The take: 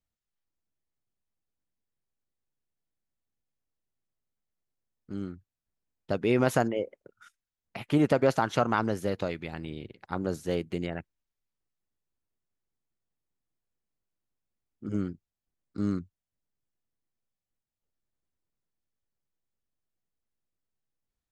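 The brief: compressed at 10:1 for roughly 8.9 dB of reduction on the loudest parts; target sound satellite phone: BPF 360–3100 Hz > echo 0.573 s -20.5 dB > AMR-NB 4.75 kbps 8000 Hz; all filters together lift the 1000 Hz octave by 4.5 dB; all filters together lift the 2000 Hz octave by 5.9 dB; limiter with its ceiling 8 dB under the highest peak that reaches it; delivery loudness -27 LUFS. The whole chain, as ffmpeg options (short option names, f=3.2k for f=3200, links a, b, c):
-af "equalizer=f=1k:t=o:g=4.5,equalizer=f=2k:t=o:g=7,acompressor=threshold=-25dB:ratio=10,alimiter=limit=-19dB:level=0:latency=1,highpass=360,lowpass=3.1k,aecho=1:1:573:0.0944,volume=12.5dB" -ar 8000 -c:a libopencore_amrnb -b:a 4750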